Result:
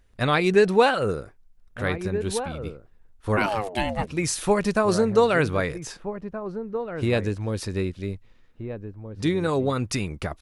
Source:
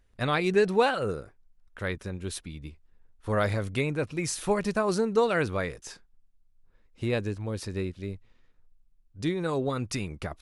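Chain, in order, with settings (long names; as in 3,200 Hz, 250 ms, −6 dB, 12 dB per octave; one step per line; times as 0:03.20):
slap from a distant wall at 270 metres, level −10 dB
0:03.36–0:04.06: ring modulation 930 Hz → 310 Hz
level +5 dB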